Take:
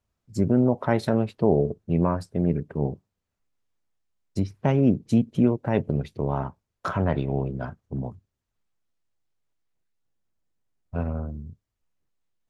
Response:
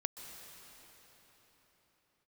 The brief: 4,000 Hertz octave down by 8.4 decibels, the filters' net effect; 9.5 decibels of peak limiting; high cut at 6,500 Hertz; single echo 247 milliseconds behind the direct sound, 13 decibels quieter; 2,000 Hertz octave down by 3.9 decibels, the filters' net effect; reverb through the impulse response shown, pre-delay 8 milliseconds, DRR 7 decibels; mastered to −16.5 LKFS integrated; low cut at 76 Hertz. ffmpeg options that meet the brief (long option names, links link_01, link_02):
-filter_complex "[0:a]highpass=76,lowpass=6500,equalizer=frequency=2000:width_type=o:gain=-3.5,equalizer=frequency=4000:width_type=o:gain=-9,alimiter=limit=-18dB:level=0:latency=1,aecho=1:1:247:0.224,asplit=2[link_01][link_02];[1:a]atrim=start_sample=2205,adelay=8[link_03];[link_02][link_03]afir=irnorm=-1:irlink=0,volume=-7dB[link_04];[link_01][link_04]amix=inputs=2:normalize=0,volume=12.5dB"